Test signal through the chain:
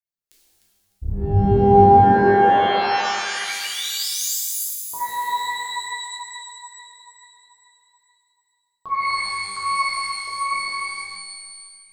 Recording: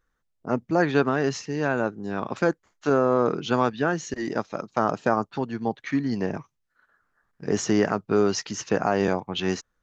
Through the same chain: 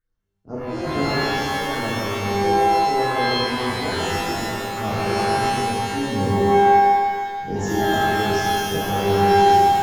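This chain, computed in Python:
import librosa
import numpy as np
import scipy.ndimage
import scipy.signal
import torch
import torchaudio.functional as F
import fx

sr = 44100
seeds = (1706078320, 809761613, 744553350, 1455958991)

y = fx.octave_divider(x, sr, octaves=1, level_db=-3.0)
y = fx.rider(y, sr, range_db=3, speed_s=2.0)
y = fx.phaser_stages(y, sr, stages=4, low_hz=140.0, high_hz=2800.0, hz=2.3, feedback_pct=40)
y = fx.echo_alternate(y, sr, ms=151, hz=1000.0, feedback_pct=56, wet_db=-3.0)
y = fx.rev_shimmer(y, sr, seeds[0], rt60_s=1.5, semitones=12, shimmer_db=-2, drr_db=-6.5)
y = y * librosa.db_to_amplitude(-10.0)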